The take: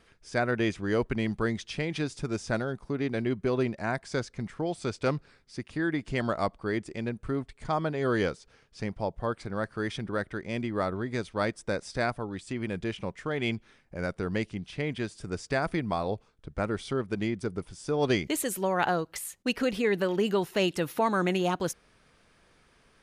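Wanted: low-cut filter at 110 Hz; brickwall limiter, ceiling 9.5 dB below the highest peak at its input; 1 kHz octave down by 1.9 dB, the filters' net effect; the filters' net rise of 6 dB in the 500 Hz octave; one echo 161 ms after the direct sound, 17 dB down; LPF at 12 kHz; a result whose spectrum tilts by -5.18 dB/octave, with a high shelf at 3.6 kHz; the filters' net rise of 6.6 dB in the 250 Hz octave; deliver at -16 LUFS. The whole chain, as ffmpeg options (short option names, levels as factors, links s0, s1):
-af "highpass=110,lowpass=12000,equalizer=f=250:t=o:g=7,equalizer=f=500:t=o:g=6.5,equalizer=f=1000:t=o:g=-7,highshelf=f=3600:g=8,alimiter=limit=0.126:level=0:latency=1,aecho=1:1:161:0.141,volume=4.73"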